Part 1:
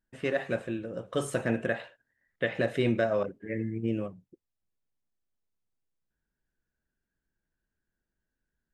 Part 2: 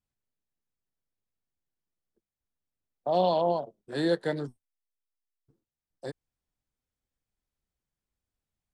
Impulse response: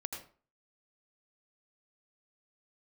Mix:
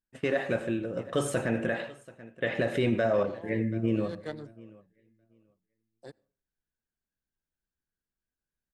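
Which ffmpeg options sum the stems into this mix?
-filter_complex "[0:a]agate=range=-13dB:threshold=-46dB:ratio=16:detection=peak,volume=1dB,asplit=4[link_01][link_02][link_03][link_04];[link_02]volume=-8dB[link_05];[link_03]volume=-20.5dB[link_06];[1:a]aeval=exprs='0.224*(cos(1*acos(clip(val(0)/0.224,-1,1)))-cos(1*PI/2))+0.0158*(cos(7*acos(clip(val(0)/0.224,-1,1)))-cos(7*PI/2))':channel_layout=same,volume=-5dB,afade=type=in:start_time=3.93:duration=0.33:silence=0.251189,asplit=2[link_07][link_08];[link_08]volume=-23dB[link_09];[link_04]apad=whole_len=385157[link_10];[link_07][link_10]sidechaincompress=threshold=-35dB:ratio=8:attack=42:release=529[link_11];[2:a]atrim=start_sample=2205[link_12];[link_05][link_09]amix=inputs=2:normalize=0[link_13];[link_13][link_12]afir=irnorm=-1:irlink=0[link_14];[link_06]aecho=0:1:733|1466|2199:1|0.17|0.0289[link_15];[link_01][link_11][link_14][link_15]amix=inputs=4:normalize=0,alimiter=limit=-17.5dB:level=0:latency=1:release=11"

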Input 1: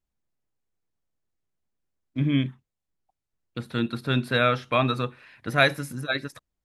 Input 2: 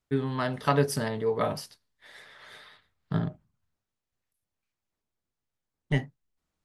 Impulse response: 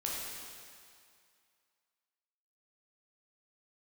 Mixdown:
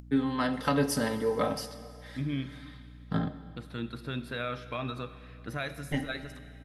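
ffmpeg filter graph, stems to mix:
-filter_complex "[0:a]aeval=exprs='val(0)+0.01*(sin(2*PI*60*n/s)+sin(2*PI*2*60*n/s)/2+sin(2*PI*3*60*n/s)/3+sin(2*PI*4*60*n/s)/4+sin(2*PI*5*60*n/s)/5)':channel_layout=same,alimiter=limit=-16dB:level=0:latency=1:release=103,volume=-10dB,asplit=3[link_01][link_02][link_03];[link_02]volume=-12.5dB[link_04];[1:a]bandreject=frequency=1100:width=25,aecho=1:1:3.8:0.56,acrossover=split=360|3000[link_05][link_06][link_07];[link_06]acompressor=threshold=-26dB:ratio=6[link_08];[link_05][link_08][link_07]amix=inputs=3:normalize=0,volume=-1.5dB,asplit=2[link_09][link_10];[link_10]volume=-12.5dB[link_11];[link_03]apad=whole_len=293216[link_12];[link_09][link_12]sidechaincompress=threshold=-41dB:ratio=8:attack=16:release=636[link_13];[2:a]atrim=start_sample=2205[link_14];[link_04][link_11]amix=inputs=2:normalize=0[link_15];[link_15][link_14]afir=irnorm=-1:irlink=0[link_16];[link_01][link_13][link_16]amix=inputs=3:normalize=0,acompressor=mode=upward:threshold=-45dB:ratio=2.5"

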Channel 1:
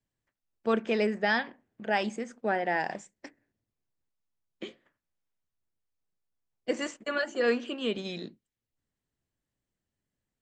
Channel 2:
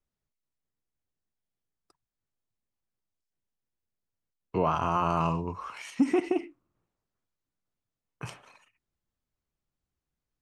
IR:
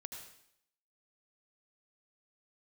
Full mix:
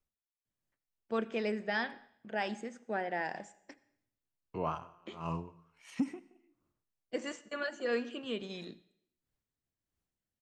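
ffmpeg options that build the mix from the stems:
-filter_complex "[0:a]bandreject=frequency=411.6:width_type=h:width=4,bandreject=frequency=823.2:width_type=h:width=4,bandreject=frequency=1234.8:width_type=h:width=4,bandreject=frequency=1646.4:width_type=h:width=4,bandreject=frequency=2058:width_type=h:width=4,bandreject=frequency=2469.6:width_type=h:width=4,bandreject=frequency=2881.2:width_type=h:width=4,bandreject=frequency=3292.8:width_type=h:width=4,bandreject=frequency=3704.4:width_type=h:width=4,bandreject=frequency=4116:width_type=h:width=4,bandreject=frequency=4527.6:width_type=h:width=4,bandreject=frequency=4939.2:width_type=h:width=4,bandreject=frequency=5350.8:width_type=h:width=4,bandreject=frequency=5762.4:width_type=h:width=4,bandreject=frequency=6174:width_type=h:width=4,bandreject=frequency=6585.6:width_type=h:width=4,bandreject=frequency=6997.2:width_type=h:width=4,bandreject=frequency=7408.8:width_type=h:width=4,bandreject=frequency=7820.4:width_type=h:width=4,bandreject=frequency=8232:width_type=h:width=4,bandreject=frequency=8643.6:width_type=h:width=4,bandreject=frequency=9055.2:width_type=h:width=4,bandreject=frequency=9466.8:width_type=h:width=4,bandreject=frequency=9878.4:width_type=h:width=4,bandreject=frequency=10290:width_type=h:width=4,bandreject=frequency=10701.6:width_type=h:width=4,bandreject=frequency=11113.2:width_type=h:width=4,bandreject=frequency=11524.8:width_type=h:width=4,adelay=450,volume=-8dB,asplit=2[link_01][link_02];[link_02]volume=-11dB[link_03];[1:a]acompressor=threshold=-32dB:ratio=2,aeval=exprs='val(0)*pow(10,-33*(0.5-0.5*cos(2*PI*1.5*n/s))/20)':channel_layout=same,volume=-2.5dB,asplit=2[link_04][link_05];[link_05]volume=-10.5dB[link_06];[2:a]atrim=start_sample=2205[link_07];[link_03][link_06]amix=inputs=2:normalize=0[link_08];[link_08][link_07]afir=irnorm=-1:irlink=0[link_09];[link_01][link_04][link_09]amix=inputs=3:normalize=0"

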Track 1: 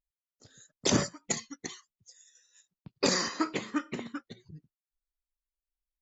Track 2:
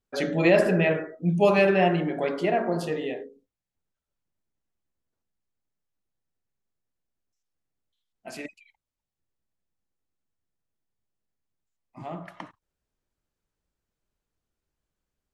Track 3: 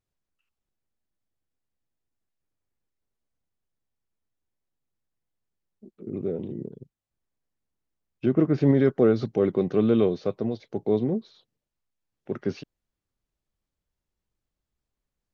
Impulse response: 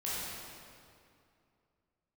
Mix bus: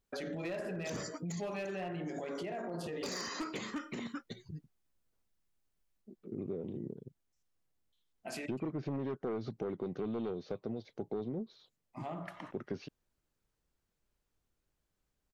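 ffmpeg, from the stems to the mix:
-filter_complex "[0:a]volume=3dB[link_01];[1:a]acompressor=threshold=-40dB:ratio=1.5,volume=0dB,asplit=2[link_02][link_03];[2:a]aeval=exprs='0.376*sin(PI/2*1.78*val(0)/0.376)':channel_layout=same,adelay=250,volume=-14.5dB[link_04];[link_03]apad=whole_len=265186[link_05];[link_01][link_05]sidechaincompress=threshold=-36dB:ratio=12:attack=7.3:release=195[link_06];[link_06][link_02]amix=inputs=2:normalize=0,volume=22.5dB,asoftclip=hard,volume=-22.5dB,alimiter=level_in=7.5dB:limit=-24dB:level=0:latency=1:release=40,volume=-7.5dB,volume=0dB[link_07];[link_04][link_07]amix=inputs=2:normalize=0,acompressor=threshold=-35dB:ratio=6"

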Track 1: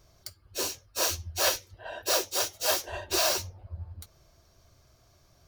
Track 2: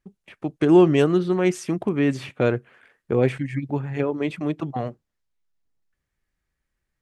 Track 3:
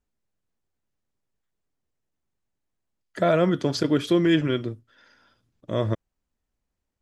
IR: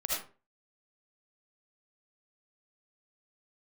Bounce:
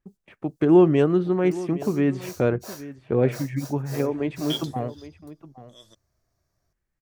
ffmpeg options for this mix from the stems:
-filter_complex "[0:a]equalizer=frequency=3000:width=1.7:gain=-11.5,adelay=1250,volume=-13.5dB[link_01];[1:a]highshelf=frequency=2500:gain=-11.5,volume=-0.5dB,asplit=3[link_02][link_03][link_04];[link_03]volume=-16.5dB[link_05];[2:a]highpass=160,aexciter=amount=14.3:drive=6.3:freq=3400,adynamicequalizer=threshold=0.0224:dfrequency=1500:dqfactor=0.7:tfrequency=1500:tqfactor=0.7:attack=5:release=100:ratio=0.375:range=3.5:mode=boostabove:tftype=highshelf,volume=-14dB,asplit=3[link_06][link_07][link_08];[link_06]atrim=end=2.11,asetpts=PTS-STARTPTS,afade=type=out:start_time=2.106:duration=0.004:curve=hsin[link_09];[link_07]atrim=start=2.11:end=4.5,asetpts=PTS-STARTPTS,volume=0[link_10];[link_08]atrim=start=4.5,asetpts=PTS-STARTPTS,afade=type=in:duration=0.004:curve=hsin[link_11];[link_09][link_10][link_11]concat=n=3:v=0:a=1[link_12];[link_04]apad=whole_len=309189[link_13];[link_12][link_13]sidechaingate=range=-16dB:threshold=-50dB:ratio=16:detection=peak[link_14];[link_05]aecho=0:1:815:1[link_15];[link_01][link_02][link_14][link_15]amix=inputs=4:normalize=0"

